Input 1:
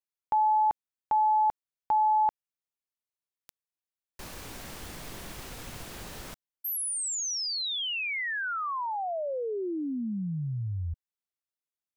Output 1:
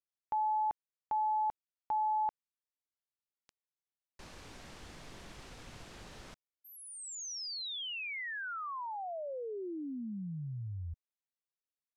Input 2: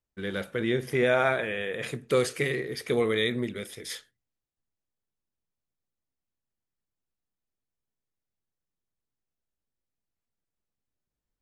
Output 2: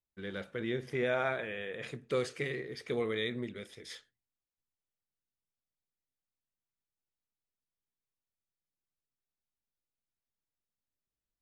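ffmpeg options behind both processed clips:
-af "lowpass=6800,volume=0.398"

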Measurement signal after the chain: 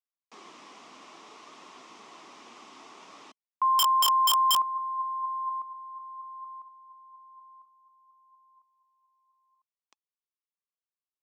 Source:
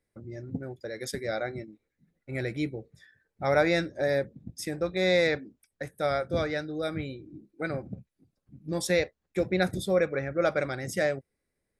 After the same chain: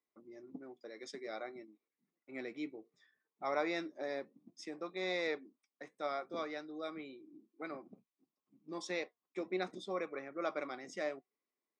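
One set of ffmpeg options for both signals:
-af "highpass=f=250:w=0.5412,highpass=f=250:w=1.3066,equalizer=f=530:t=q:w=4:g=-7,equalizer=f=1100:t=q:w=4:g=10,equalizer=f=1600:t=q:w=4:g=-9,equalizer=f=4300:t=q:w=4:g=-5,lowpass=f=6200:w=0.5412,lowpass=f=6200:w=1.3066,flanger=delay=0.9:depth=3.4:regen=85:speed=0.6:shape=triangular,aeval=exprs='(mod(5.01*val(0)+1,2)-1)/5.01':c=same,volume=0.596"

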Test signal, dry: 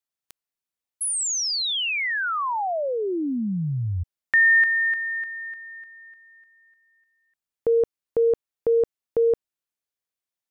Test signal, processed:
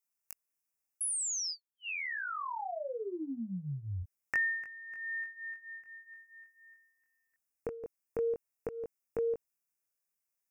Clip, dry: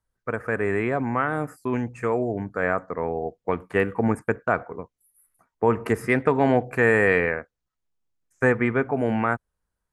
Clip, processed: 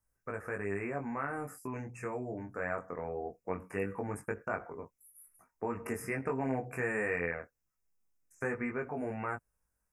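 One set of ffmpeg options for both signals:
-af "highshelf=f=6100:g=10,acompressor=threshold=0.00126:ratio=1.5:attack=52:release=22:detection=peak,flanger=delay=19.5:depth=3.9:speed=0.21,asuperstop=centerf=3700:order=20:qfactor=1.8"

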